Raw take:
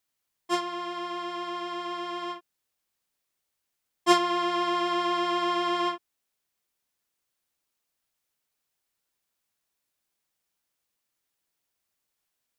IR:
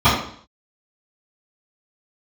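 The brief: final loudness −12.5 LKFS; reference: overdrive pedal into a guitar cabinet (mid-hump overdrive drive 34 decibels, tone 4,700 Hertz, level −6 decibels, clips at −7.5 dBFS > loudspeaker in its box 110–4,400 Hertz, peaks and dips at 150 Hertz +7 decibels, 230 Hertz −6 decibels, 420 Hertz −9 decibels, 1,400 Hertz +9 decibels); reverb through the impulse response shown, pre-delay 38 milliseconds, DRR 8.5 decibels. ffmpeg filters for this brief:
-filter_complex "[0:a]asplit=2[link_01][link_02];[1:a]atrim=start_sample=2205,adelay=38[link_03];[link_02][link_03]afir=irnorm=-1:irlink=0,volume=-34dB[link_04];[link_01][link_04]amix=inputs=2:normalize=0,asplit=2[link_05][link_06];[link_06]highpass=frequency=720:poles=1,volume=34dB,asoftclip=type=tanh:threshold=-7.5dB[link_07];[link_05][link_07]amix=inputs=2:normalize=0,lowpass=frequency=4700:poles=1,volume=-6dB,highpass=110,equalizer=frequency=150:width_type=q:width=4:gain=7,equalizer=frequency=230:width_type=q:width=4:gain=-6,equalizer=frequency=420:width_type=q:width=4:gain=-9,equalizer=frequency=1400:width_type=q:width=4:gain=9,lowpass=frequency=4400:width=0.5412,lowpass=frequency=4400:width=1.3066,volume=0.5dB"

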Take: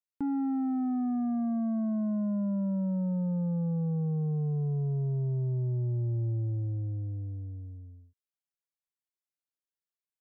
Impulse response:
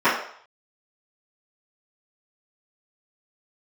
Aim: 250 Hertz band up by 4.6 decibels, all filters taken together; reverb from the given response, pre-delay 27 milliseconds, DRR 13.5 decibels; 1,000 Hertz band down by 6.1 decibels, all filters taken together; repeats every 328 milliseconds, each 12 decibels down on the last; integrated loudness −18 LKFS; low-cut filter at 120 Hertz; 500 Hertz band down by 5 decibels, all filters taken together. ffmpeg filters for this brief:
-filter_complex "[0:a]highpass=120,equalizer=frequency=250:width_type=o:gain=8,equalizer=frequency=500:width_type=o:gain=-8,equalizer=frequency=1000:width_type=o:gain=-5.5,aecho=1:1:328|656|984:0.251|0.0628|0.0157,asplit=2[link_01][link_02];[1:a]atrim=start_sample=2205,adelay=27[link_03];[link_02][link_03]afir=irnorm=-1:irlink=0,volume=-35.5dB[link_04];[link_01][link_04]amix=inputs=2:normalize=0,volume=9dB"

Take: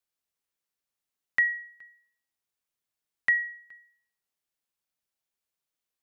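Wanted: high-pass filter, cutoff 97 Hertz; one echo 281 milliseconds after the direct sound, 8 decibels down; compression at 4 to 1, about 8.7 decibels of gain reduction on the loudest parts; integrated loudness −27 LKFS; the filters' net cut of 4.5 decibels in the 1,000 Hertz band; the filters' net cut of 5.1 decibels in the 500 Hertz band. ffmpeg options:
ffmpeg -i in.wav -af "highpass=97,equalizer=frequency=500:width_type=o:gain=-5,equalizer=frequency=1000:width_type=o:gain=-5,acompressor=threshold=-31dB:ratio=4,aecho=1:1:281:0.398,volume=9.5dB" out.wav

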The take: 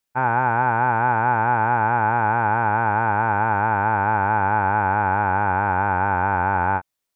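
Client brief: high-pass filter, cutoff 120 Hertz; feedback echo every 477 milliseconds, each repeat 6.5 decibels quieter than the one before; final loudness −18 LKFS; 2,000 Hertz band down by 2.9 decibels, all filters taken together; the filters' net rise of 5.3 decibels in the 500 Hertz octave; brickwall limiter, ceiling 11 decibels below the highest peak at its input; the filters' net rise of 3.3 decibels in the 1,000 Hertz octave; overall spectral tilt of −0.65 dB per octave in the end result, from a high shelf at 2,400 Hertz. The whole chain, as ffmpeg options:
ffmpeg -i in.wav -af "highpass=120,equalizer=frequency=500:width_type=o:gain=6.5,equalizer=frequency=1000:width_type=o:gain=3.5,equalizer=frequency=2000:width_type=o:gain=-4.5,highshelf=frequency=2400:gain=-7,alimiter=limit=-16.5dB:level=0:latency=1,aecho=1:1:477|954|1431|1908|2385|2862:0.473|0.222|0.105|0.0491|0.0231|0.0109,volume=7.5dB" out.wav

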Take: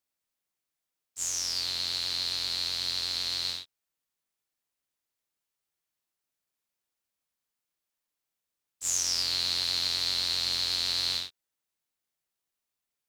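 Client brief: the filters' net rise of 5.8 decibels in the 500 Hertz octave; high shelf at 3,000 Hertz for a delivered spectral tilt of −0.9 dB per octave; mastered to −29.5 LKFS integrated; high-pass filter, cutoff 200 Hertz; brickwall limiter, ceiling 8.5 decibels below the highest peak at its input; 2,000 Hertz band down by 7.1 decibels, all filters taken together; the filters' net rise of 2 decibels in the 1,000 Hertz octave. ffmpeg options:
ffmpeg -i in.wav -af "highpass=200,equalizer=frequency=500:width_type=o:gain=7,equalizer=frequency=1000:width_type=o:gain=3.5,equalizer=frequency=2000:width_type=o:gain=-9,highshelf=frequency=3000:gain=-4,volume=8dB,alimiter=limit=-18dB:level=0:latency=1" out.wav

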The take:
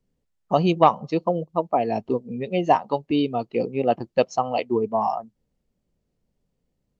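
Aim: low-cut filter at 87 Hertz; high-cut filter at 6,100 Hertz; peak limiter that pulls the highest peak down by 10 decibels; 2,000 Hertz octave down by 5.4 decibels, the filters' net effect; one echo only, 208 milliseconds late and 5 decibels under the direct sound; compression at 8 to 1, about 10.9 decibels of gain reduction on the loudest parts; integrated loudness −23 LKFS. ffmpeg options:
ffmpeg -i in.wav -af "highpass=87,lowpass=6100,equalizer=frequency=2000:width_type=o:gain=-7.5,acompressor=threshold=-23dB:ratio=8,alimiter=limit=-21.5dB:level=0:latency=1,aecho=1:1:208:0.562,volume=8.5dB" out.wav

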